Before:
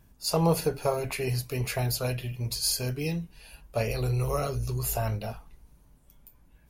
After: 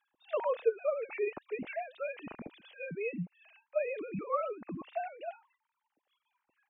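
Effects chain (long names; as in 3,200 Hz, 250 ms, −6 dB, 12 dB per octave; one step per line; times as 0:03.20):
three sine waves on the formant tracks
level −7.5 dB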